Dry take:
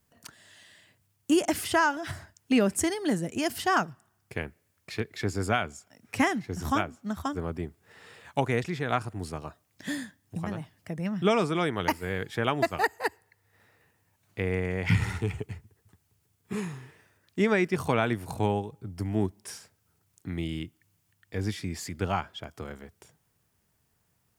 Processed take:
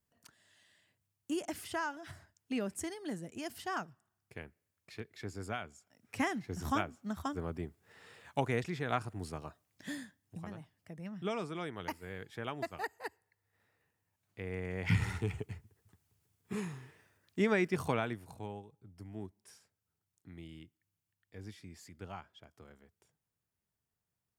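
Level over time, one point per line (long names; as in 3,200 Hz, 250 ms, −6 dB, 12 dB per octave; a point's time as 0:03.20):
0:05.74 −13 dB
0:06.52 −6 dB
0:09.41 −6 dB
0:10.76 −13 dB
0:14.40 −13 dB
0:14.95 −5.5 dB
0:17.86 −5.5 dB
0:18.40 −17 dB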